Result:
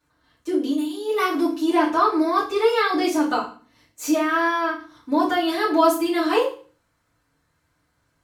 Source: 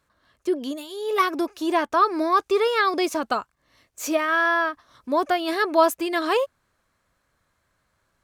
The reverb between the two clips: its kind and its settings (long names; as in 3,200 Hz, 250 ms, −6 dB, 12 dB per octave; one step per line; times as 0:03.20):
feedback delay network reverb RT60 0.39 s, low-frequency decay 1.55×, high-frequency decay 1×, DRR −8.5 dB
level −8 dB